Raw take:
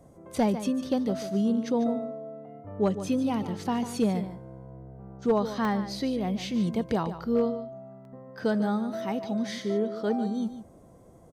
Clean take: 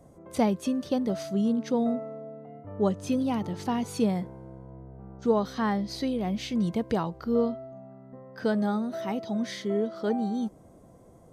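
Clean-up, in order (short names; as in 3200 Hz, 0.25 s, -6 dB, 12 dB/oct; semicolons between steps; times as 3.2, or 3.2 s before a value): clip repair -16 dBFS; interpolate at 5.65/8.05, 1.3 ms; inverse comb 0.147 s -12 dB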